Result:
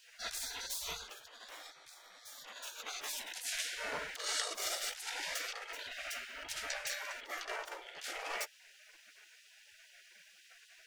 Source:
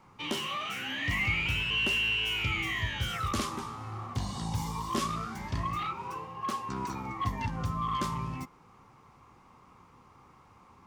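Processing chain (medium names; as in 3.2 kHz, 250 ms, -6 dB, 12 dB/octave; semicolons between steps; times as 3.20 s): compressor with a negative ratio -36 dBFS, ratio -0.5; tilt shelf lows +6.5 dB, about 1.1 kHz; spectral gate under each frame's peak -30 dB weak; trim +14.5 dB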